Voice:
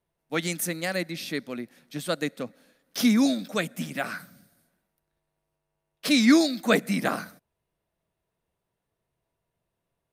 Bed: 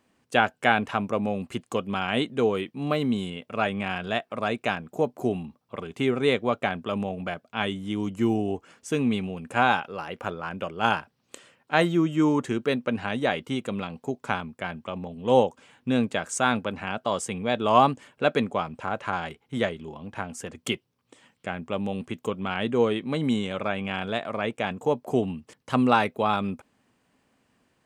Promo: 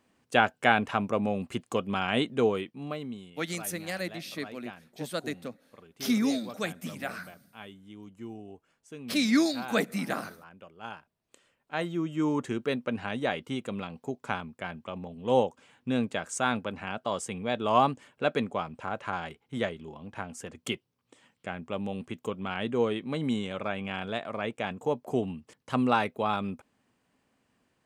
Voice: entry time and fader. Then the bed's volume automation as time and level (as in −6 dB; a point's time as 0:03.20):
3.05 s, −5.5 dB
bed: 0:02.46 −1.5 dB
0:03.35 −18 dB
0:11.00 −18 dB
0:12.41 −4.5 dB